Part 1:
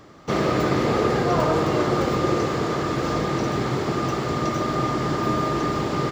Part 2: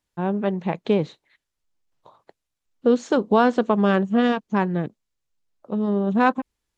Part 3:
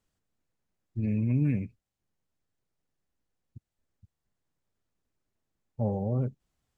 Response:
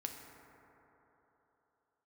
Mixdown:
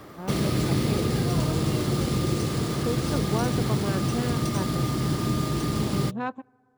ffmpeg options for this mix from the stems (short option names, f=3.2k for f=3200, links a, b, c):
-filter_complex "[0:a]acrossover=split=250|3000[a][b][c];[b]acompressor=threshold=-39dB:ratio=4[d];[a][d][c]amix=inputs=3:normalize=0,acrusher=samples=3:mix=1:aa=0.000001,volume=3dB[e];[1:a]volume=-13dB,asplit=2[f][g];[g]volume=-23.5dB[h];[2:a]volume=-18dB,asplit=2[i][j];[j]volume=-15dB[k];[3:a]atrim=start_sample=2205[l];[h][k]amix=inputs=2:normalize=0[m];[m][l]afir=irnorm=-1:irlink=0[n];[e][f][i][n]amix=inputs=4:normalize=0"